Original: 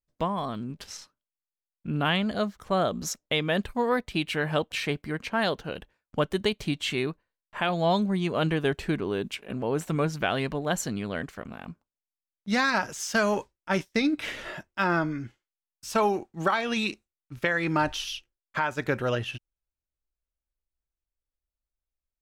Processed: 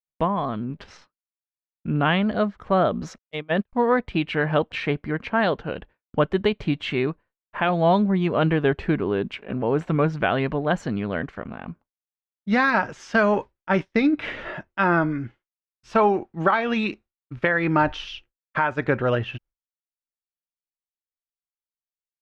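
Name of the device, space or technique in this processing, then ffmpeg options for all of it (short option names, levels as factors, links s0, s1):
hearing-loss simulation: -filter_complex "[0:a]lowpass=2300,agate=range=0.0224:threshold=0.00282:ratio=3:detection=peak,asettb=1/sr,asplit=3[s0][s1][s2];[s0]atrim=end=3.184[s3];[s1]atrim=start=3.18:end=3.73,asetpts=PTS-STARTPTS,afade=t=in:d=0.004:c=qsin,afade=t=out:st=0.546:d=0.004:c=qsin,agate=range=0.00355:threshold=0.0562:ratio=16:detection=peak[s4];[s2]atrim=start=3.726[s5];[s3][s4]acrossfade=d=0.004:c1=hsin:c2=qsin[s6];[s6][s5]acrossfade=d=0.004:c1=qsin:c2=hsin,volume=1.88"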